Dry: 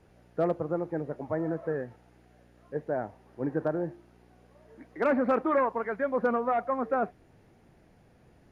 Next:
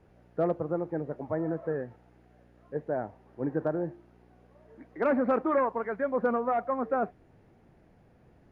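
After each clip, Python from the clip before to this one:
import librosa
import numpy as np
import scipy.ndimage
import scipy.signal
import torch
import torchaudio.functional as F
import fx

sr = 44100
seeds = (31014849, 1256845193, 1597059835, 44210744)

y = fx.high_shelf(x, sr, hz=3100.0, db=-10.0)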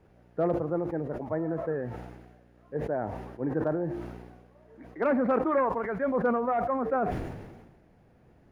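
y = fx.sustainer(x, sr, db_per_s=43.0)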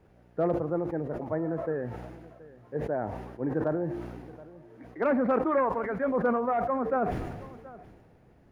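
y = x + 10.0 ** (-19.5 / 20.0) * np.pad(x, (int(725 * sr / 1000.0), 0))[:len(x)]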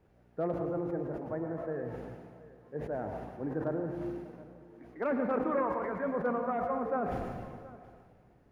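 y = fx.rev_plate(x, sr, seeds[0], rt60_s=1.5, hf_ratio=0.6, predelay_ms=90, drr_db=5.5)
y = F.gain(torch.from_numpy(y), -6.0).numpy()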